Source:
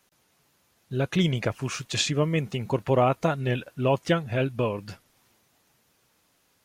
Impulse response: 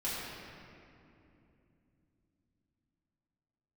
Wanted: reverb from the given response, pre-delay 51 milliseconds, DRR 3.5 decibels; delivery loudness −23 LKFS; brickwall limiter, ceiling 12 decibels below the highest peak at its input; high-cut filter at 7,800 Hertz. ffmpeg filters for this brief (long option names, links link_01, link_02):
-filter_complex "[0:a]lowpass=7800,alimiter=limit=-21dB:level=0:latency=1,asplit=2[link_01][link_02];[1:a]atrim=start_sample=2205,adelay=51[link_03];[link_02][link_03]afir=irnorm=-1:irlink=0,volume=-9dB[link_04];[link_01][link_04]amix=inputs=2:normalize=0,volume=7dB"